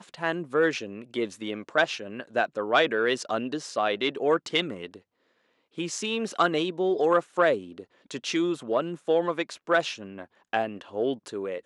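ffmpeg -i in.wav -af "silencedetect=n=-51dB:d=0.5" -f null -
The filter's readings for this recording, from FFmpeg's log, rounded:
silence_start: 5.01
silence_end: 5.75 | silence_duration: 0.74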